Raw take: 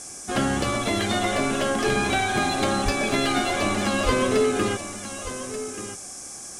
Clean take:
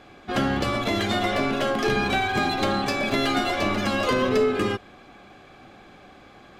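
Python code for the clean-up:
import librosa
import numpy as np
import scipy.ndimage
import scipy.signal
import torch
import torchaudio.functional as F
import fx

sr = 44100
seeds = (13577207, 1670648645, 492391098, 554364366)

y = fx.fix_deplosive(x, sr, at_s=(2.84, 4.05))
y = fx.noise_reduce(y, sr, print_start_s=6.07, print_end_s=6.57, reduce_db=11.0)
y = fx.fix_echo_inverse(y, sr, delay_ms=1183, level_db=-12.0)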